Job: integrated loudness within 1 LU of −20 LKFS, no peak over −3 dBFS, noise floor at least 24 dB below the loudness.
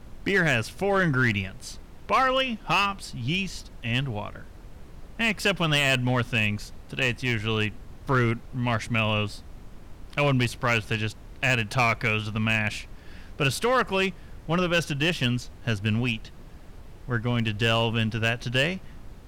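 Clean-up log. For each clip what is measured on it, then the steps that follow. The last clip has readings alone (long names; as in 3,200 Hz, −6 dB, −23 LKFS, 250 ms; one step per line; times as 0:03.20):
share of clipped samples 0.8%; peaks flattened at −15.5 dBFS; background noise floor −46 dBFS; target noise floor −50 dBFS; integrated loudness −25.5 LKFS; sample peak −15.5 dBFS; target loudness −20.0 LKFS
→ clipped peaks rebuilt −15.5 dBFS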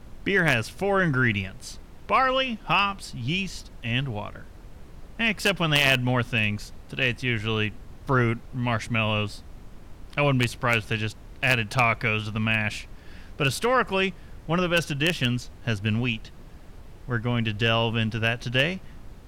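share of clipped samples 0.0%; background noise floor −46 dBFS; target noise floor −49 dBFS
→ noise reduction from a noise print 6 dB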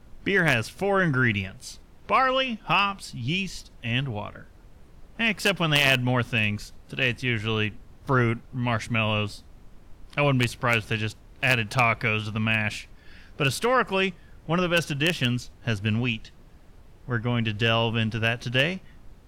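background noise floor −51 dBFS; integrated loudness −24.5 LKFS; sample peak −6.5 dBFS; target loudness −20.0 LKFS
→ level +4.5 dB
brickwall limiter −3 dBFS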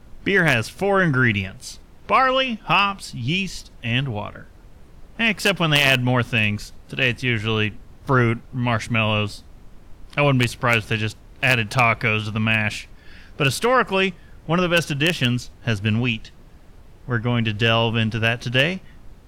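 integrated loudness −20.5 LKFS; sample peak −3.0 dBFS; background noise floor −46 dBFS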